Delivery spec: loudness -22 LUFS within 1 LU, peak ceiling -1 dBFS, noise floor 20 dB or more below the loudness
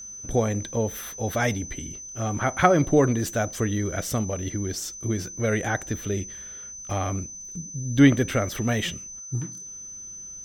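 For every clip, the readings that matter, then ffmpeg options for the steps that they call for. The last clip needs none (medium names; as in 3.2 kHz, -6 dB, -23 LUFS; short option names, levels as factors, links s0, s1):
steady tone 6.1 kHz; tone level -37 dBFS; loudness -25.5 LUFS; peak level -3.0 dBFS; loudness target -22.0 LUFS
-> -af "bandreject=f=6100:w=30"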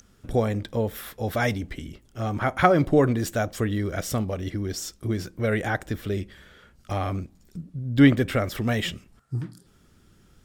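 steady tone not found; loudness -25.5 LUFS; peak level -3.0 dBFS; loudness target -22.0 LUFS
-> -af "volume=1.5,alimiter=limit=0.891:level=0:latency=1"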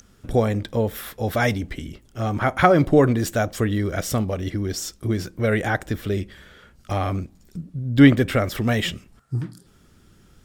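loudness -22.0 LUFS; peak level -1.0 dBFS; noise floor -55 dBFS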